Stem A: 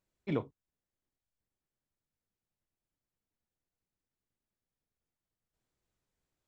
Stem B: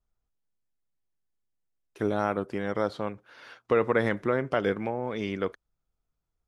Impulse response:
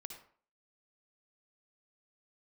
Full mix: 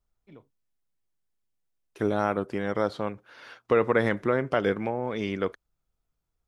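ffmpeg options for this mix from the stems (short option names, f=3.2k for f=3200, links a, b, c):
-filter_complex "[0:a]volume=-18dB[a];[1:a]volume=1.5dB[b];[a][b]amix=inputs=2:normalize=0"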